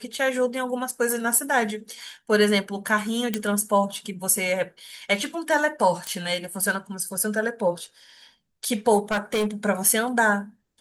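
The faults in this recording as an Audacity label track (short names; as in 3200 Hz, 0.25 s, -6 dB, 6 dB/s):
3.340000	3.340000	pop -9 dBFS
6.070000	6.070000	pop -14 dBFS
9.110000	9.470000	clipped -20 dBFS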